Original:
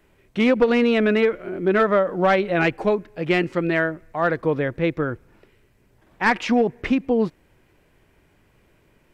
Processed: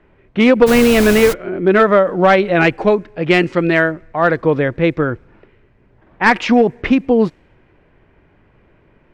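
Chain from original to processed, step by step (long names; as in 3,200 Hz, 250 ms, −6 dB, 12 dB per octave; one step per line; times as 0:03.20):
low-pass that shuts in the quiet parts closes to 2,100 Hz, open at −14 dBFS
0:00.66–0:01.32: background noise pink −29 dBFS
0:03.28–0:03.92: high-shelf EQ 4,700 Hz +5 dB
level +7 dB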